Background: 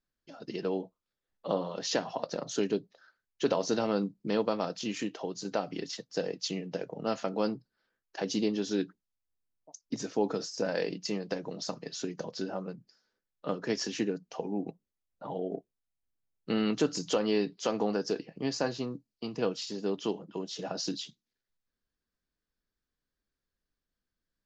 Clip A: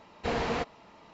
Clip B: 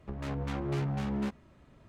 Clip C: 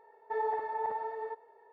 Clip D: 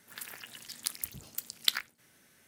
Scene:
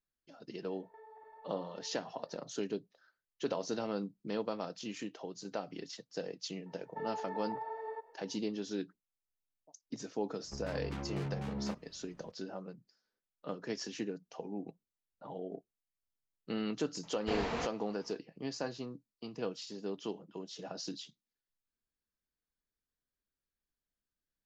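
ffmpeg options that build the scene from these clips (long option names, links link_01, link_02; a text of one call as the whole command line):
ffmpeg -i bed.wav -i cue0.wav -i cue1.wav -i cue2.wav -filter_complex "[3:a]asplit=2[link_01][link_02];[0:a]volume=-7.5dB[link_03];[link_01]acompressor=threshold=-47dB:ratio=6:attack=3.2:release=140:knee=1:detection=peak[link_04];[link_02]alimiter=level_in=6.5dB:limit=-24dB:level=0:latency=1:release=192,volume=-6.5dB[link_05];[link_04]atrim=end=1.72,asetpts=PTS-STARTPTS,volume=-7dB,afade=type=in:duration=0.004:curve=hsin,afade=type=out:start_time=1.716:duration=0.004:curve=hsin,adelay=640[link_06];[link_05]atrim=end=1.72,asetpts=PTS-STARTPTS,volume=-2.5dB,afade=type=in:duration=0.004:curve=hsin,afade=type=out:start_time=1.716:duration=0.004:curve=hsin,adelay=293706S[link_07];[2:a]atrim=end=1.88,asetpts=PTS-STARTPTS,volume=-6.5dB,afade=type=in:duration=0.004:curve=hsin,afade=type=out:start_time=1.876:duration=0.004:curve=hsin,adelay=10440[link_08];[1:a]atrim=end=1.13,asetpts=PTS-STARTPTS,volume=-6dB,afade=type=in:duration=0.004:curve=hsin,afade=type=out:start_time=1.126:duration=0.004:curve=hsin,adelay=17030[link_09];[link_03][link_06][link_07][link_08][link_09]amix=inputs=5:normalize=0" out.wav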